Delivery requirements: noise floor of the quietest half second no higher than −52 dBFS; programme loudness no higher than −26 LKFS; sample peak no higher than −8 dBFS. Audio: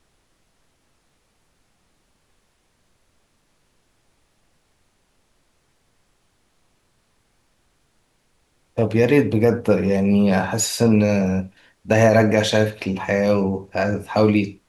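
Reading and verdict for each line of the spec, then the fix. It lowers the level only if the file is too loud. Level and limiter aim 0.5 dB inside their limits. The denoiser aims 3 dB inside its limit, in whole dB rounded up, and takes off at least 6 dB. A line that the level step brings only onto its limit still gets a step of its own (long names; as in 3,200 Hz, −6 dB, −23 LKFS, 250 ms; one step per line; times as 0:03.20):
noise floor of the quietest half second −65 dBFS: in spec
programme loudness −19.0 LKFS: out of spec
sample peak −4.0 dBFS: out of spec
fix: level −7.5 dB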